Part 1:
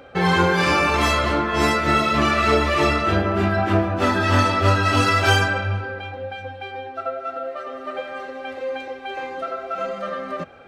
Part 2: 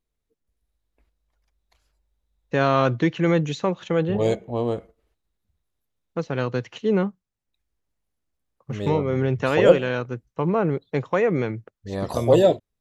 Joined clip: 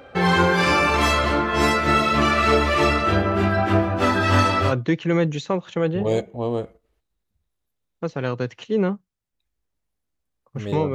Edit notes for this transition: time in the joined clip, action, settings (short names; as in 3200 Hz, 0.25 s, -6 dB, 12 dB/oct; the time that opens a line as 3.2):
part 1
4.68 switch to part 2 from 2.82 s, crossfade 0.12 s